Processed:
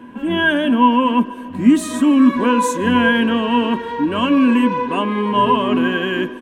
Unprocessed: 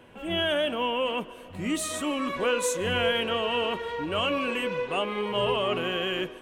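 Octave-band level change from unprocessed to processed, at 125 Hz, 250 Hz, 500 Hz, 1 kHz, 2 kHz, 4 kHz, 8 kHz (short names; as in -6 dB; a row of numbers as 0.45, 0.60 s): +9.5, +19.0, +5.5, +13.5, +10.0, +3.0, +2.5 dB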